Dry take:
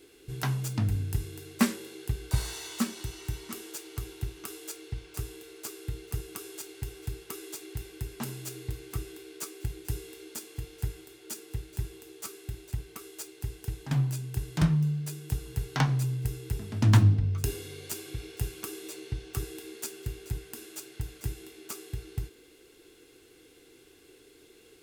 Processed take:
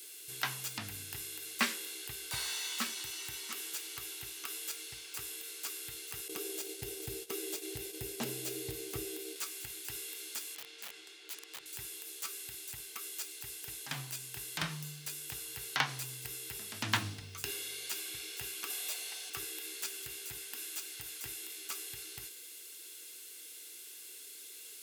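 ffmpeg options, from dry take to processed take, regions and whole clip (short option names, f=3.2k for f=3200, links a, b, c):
-filter_complex "[0:a]asettb=1/sr,asplit=3[a][b][c];[a]atrim=end=6.284[d];[b]atrim=start=6.28:end=9.36,asetpts=PTS-STARTPTS,afade=t=in:d=0.004:c=qsin,afade=t=out:st=3.076:d=0.004:c=qsin,lowshelf=f=760:t=q:w=1.5:g=11.5,agate=range=-33dB:threshold=-34dB:ratio=3:release=100:detection=peak[e];[c]atrim=start=9.356[f];[d][e]acrossfade=d=0.004:c1=hsin:c2=qsin[g];[g][f]acrossfade=d=0.004:c1=qsin:c2=hsin,asettb=1/sr,asplit=3[h][i][j];[h]atrim=end=10.554[k];[i]atrim=start=10.55:end=11.66,asetpts=PTS-STARTPTS,afade=t=in:d=0.004:c=qsin,afade=t=out:st=1.106:d=0.004:c=qsin,highpass=170,lowpass=3.7k,aeval=exprs='(mod(112*val(0)+1,2)-1)/112':c=same[l];[j]atrim=start=11.656[m];[k][l]acrossfade=d=0.004:c1=hsin:c2=qsin[n];[n][m]acrossfade=d=0.004:c1=qsin:c2=hsin,asettb=1/sr,asplit=3[o][p][q];[o]atrim=end=18.704[r];[p]atrim=start=18.7:end=19.3,asetpts=PTS-STARTPTS,afade=t=in:d=0.004:c=qsin,afade=t=out:st=0.596:d=0.004:c=qsin,highpass=f=650:t=q:w=3.4,aemphasis=mode=production:type=cd[s];[q]atrim=start=19.296[t];[r][s]acrossfade=d=0.004:c1=hsin:c2=qsin[u];[u][t]acrossfade=d=0.004:c1=qsin:c2=hsin,acrossover=split=3700[v][w];[w]acompressor=threshold=-56dB:ratio=4:attack=1:release=60[x];[v][x]amix=inputs=2:normalize=0,aderivative,volume=14dB"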